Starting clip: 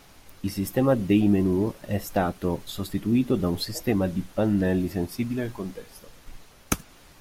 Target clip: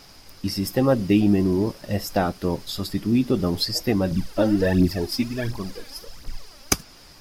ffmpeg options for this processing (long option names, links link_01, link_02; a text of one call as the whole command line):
ffmpeg -i in.wav -filter_complex "[0:a]equalizer=frequency=5000:width_type=o:width=0.29:gain=14,asettb=1/sr,asplit=3[link_01][link_02][link_03];[link_01]atrim=end=4.114[link_04];[link_02]atrim=start=4.11:end=6.73,asetpts=PTS-STARTPTS,afade=type=in:duration=0.004:curve=qsin,afade=type=out:start_time=2.616:duration=0.004:curve=qsin,aphaser=in_gain=1:out_gain=1:delay=3.9:decay=0.66:speed=1.4:type=triangular[link_05];[link_03]atrim=start=6.726[link_06];[link_04][link_05]acrossfade=duration=0.004:curve1=hsin:curve2=qsin[link_07];[link_07][link_06]acrossfade=duration=0.004:curve1=qsin:curve2=hsin,volume=2dB" out.wav